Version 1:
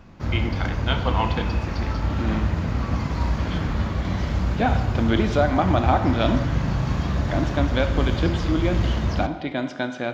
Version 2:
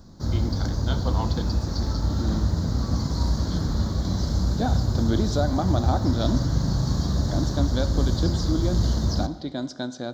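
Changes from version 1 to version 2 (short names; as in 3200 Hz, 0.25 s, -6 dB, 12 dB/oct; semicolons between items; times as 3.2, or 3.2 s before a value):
speech: send -7.5 dB; master: add EQ curve 280 Hz 0 dB, 1600 Hz -8 dB, 2600 Hz -22 dB, 4100 Hz +8 dB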